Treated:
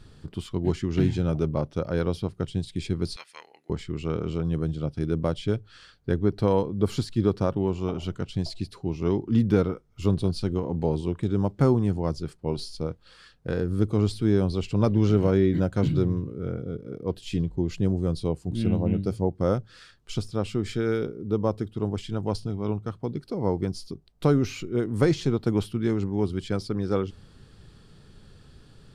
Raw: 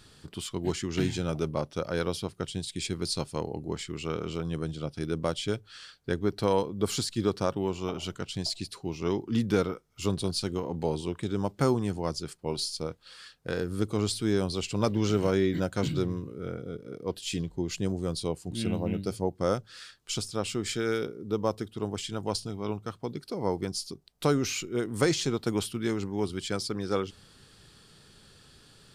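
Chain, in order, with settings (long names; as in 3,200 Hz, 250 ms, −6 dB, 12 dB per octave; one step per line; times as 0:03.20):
spectral tilt −2.5 dB per octave
0:03.16–0:03.70: high-pass with resonance 1,900 Hz, resonance Q 3.7
dynamic equaliser 7,400 Hz, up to −4 dB, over −53 dBFS, Q 1.8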